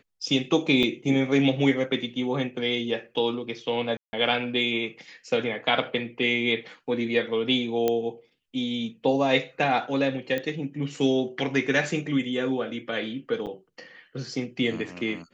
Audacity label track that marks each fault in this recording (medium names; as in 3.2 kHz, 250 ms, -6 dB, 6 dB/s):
0.830000	0.830000	dropout 3.3 ms
3.970000	4.130000	dropout 160 ms
7.880000	7.880000	pop -11 dBFS
10.380000	10.380000	pop -16 dBFS
13.460000	13.470000	dropout 8 ms